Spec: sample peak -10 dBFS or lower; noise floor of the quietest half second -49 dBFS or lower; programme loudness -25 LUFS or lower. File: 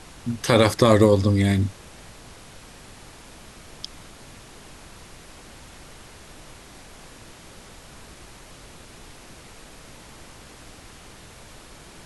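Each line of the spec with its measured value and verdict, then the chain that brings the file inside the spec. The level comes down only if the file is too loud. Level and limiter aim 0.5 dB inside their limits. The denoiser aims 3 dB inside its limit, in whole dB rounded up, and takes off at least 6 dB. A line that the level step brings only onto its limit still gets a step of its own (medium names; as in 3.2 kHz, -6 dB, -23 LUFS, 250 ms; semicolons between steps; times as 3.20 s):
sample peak -3.5 dBFS: fail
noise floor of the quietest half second -45 dBFS: fail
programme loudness -19.5 LUFS: fail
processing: trim -6 dB; peak limiter -10.5 dBFS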